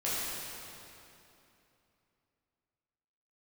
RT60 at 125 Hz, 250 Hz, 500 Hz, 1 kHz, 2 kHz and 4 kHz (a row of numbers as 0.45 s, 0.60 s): 3.4 s, 3.3 s, 3.0 s, 2.8 s, 2.6 s, 2.4 s